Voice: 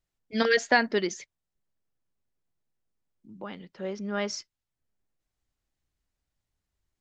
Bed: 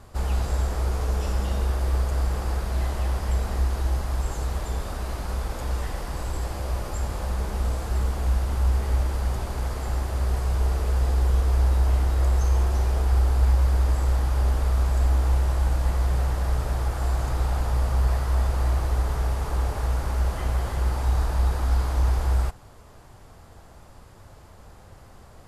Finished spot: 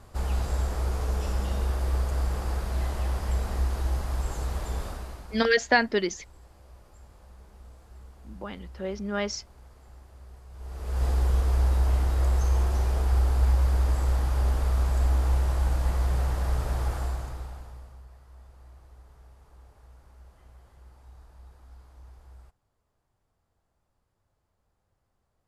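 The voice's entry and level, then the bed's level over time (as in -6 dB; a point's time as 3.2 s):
5.00 s, +1.0 dB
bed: 4.85 s -3 dB
5.66 s -23.5 dB
10.49 s -23.5 dB
11.04 s -2.5 dB
16.94 s -2.5 dB
18.08 s -28 dB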